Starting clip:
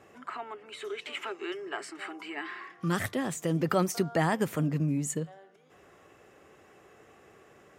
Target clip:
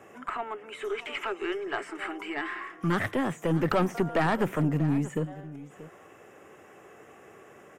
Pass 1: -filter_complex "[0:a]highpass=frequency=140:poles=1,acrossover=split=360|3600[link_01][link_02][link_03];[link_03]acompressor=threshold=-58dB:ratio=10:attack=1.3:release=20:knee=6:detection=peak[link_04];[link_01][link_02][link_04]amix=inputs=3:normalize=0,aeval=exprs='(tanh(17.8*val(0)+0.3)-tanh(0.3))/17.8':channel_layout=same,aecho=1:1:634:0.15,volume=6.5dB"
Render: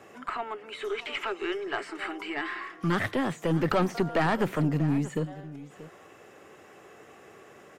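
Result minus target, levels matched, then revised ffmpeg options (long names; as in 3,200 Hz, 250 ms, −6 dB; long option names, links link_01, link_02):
4,000 Hz band +2.5 dB
-filter_complex "[0:a]highpass=frequency=140:poles=1,equalizer=frequency=4300:width_type=o:width=0.53:gain=-13,acrossover=split=360|3600[link_01][link_02][link_03];[link_03]acompressor=threshold=-58dB:ratio=10:attack=1.3:release=20:knee=6:detection=peak[link_04];[link_01][link_02][link_04]amix=inputs=3:normalize=0,aeval=exprs='(tanh(17.8*val(0)+0.3)-tanh(0.3))/17.8':channel_layout=same,aecho=1:1:634:0.15,volume=6.5dB"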